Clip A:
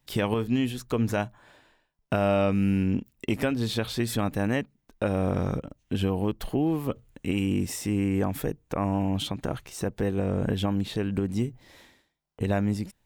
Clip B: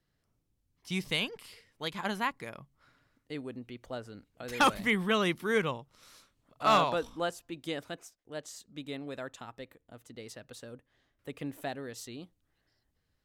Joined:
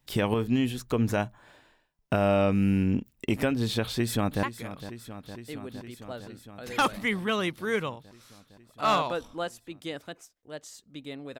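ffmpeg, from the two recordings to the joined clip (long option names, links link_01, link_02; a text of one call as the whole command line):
ffmpeg -i cue0.wav -i cue1.wav -filter_complex "[0:a]apad=whole_dur=11.39,atrim=end=11.39,atrim=end=4.432[link_01];[1:a]atrim=start=2.248:end=9.21[link_02];[link_01][link_02]acrossfade=duration=0.004:curve1=hsin:curve2=hsin,asplit=2[link_03][link_04];[link_04]afade=type=in:start_time=3.85:duration=0.01,afade=type=out:start_time=4.43:duration=0.01,aecho=0:1:460|920|1380|1840|2300|2760|3220|3680|4140|4600|5060|5520:0.223872|0.179098|0.143278|0.114623|0.091698|0.0733584|0.0586867|0.0469494|0.0375595|0.0300476|0.0240381|0.0192305[link_05];[link_03][link_05]amix=inputs=2:normalize=0" out.wav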